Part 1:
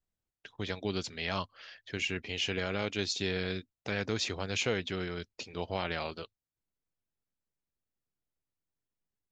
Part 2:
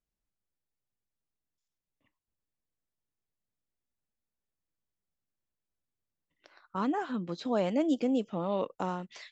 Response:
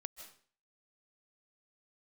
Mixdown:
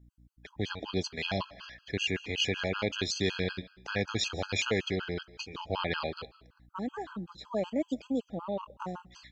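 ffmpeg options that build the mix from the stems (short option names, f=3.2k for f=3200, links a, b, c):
-filter_complex "[0:a]aeval=exprs='val(0)+0.000891*(sin(2*PI*60*n/s)+sin(2*PI*2*60*n/s)/2+sin(2*PI*3*60*n/s)/3+sin(2*PI*4*60*n/s)/4+sin(2*PI*5*60*n/s)/5)':c=same,volume=2.5dB,asplit=2[a][b];[b]volume=-5dB[c];[1:a]volume=-2.5dB,afade=t=in:st=6.48:d=0.37:silence=0.398107,asplit=2[d][e];[e]volume=-14.5dB[f];[2:a]atrim=start_sample=2205[g];[c][f]amix=inputs=2:normalize=0[h];[h][g]afir=irnorm=-1:irlink=0[i];[a][d][i]amix=inputs=3:normalize=0,afftfilt=real='re*gt(sin(2*PI*5.3*pts/sr)*(1-2*mod(floor(b*sr/1024/830),2)),0)':imag='im*gt(sin(2*PI*5.3*pts/sr)*(1-2*mod(floor(b*sr/1024/830),2)),0)':win_size=1024:overlap=0.75"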